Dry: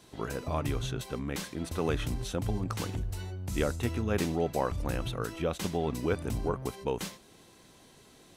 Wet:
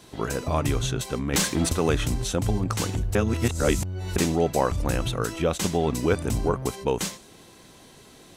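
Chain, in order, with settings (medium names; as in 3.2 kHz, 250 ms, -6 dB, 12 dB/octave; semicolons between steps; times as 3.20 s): 1.33–1.73 s: waveshaping leveller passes 2; 3.15–4.16 s: reverse; dynamic bell 7.3 kHz, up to +6 dB, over -57 dBFS, Q 1.3; trim +7 dB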